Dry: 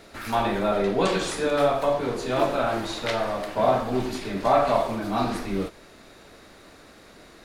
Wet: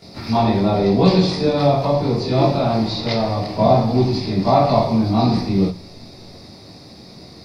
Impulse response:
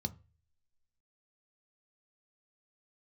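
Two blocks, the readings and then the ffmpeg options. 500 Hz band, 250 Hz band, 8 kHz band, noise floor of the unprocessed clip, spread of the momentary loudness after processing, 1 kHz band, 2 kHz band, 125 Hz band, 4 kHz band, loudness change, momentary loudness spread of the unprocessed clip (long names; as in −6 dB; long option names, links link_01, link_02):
+5.0 dB, +11.0 dB, can't be measured, −50 dBFS, 6 LU, +4.5 dB, −1.5 dB, +16.0 dB, +7.5 dB, +7.0 dB, 6 LU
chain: -filter_complex "[0:a]acrossover=split=4900[link_01][link_02];[link_02]acompressor=threshold=-57dB:ratio=4:attack=1:release=60[link_03];[link_01][link_03]amix=inputs=2:normalize=0,equalizer=frequency=125:width_type=o:width=0.33:gain=6,equalizer=frequency=1600:width_type=o:width=0.33:gain=-8,equalizer=frequency=5000:width_type=o:width=0.33:gain=12,asplit=2[link_04][link_05];[1:a]atrim=start_sample=2205,adelay=21[link_06];[link_05][link_06]afir=irnorm=-1:irlink=0,volume=7dB[link_07];[link_04][link_07]amix=inputs=2:normalize=0,volume=-4.5dB"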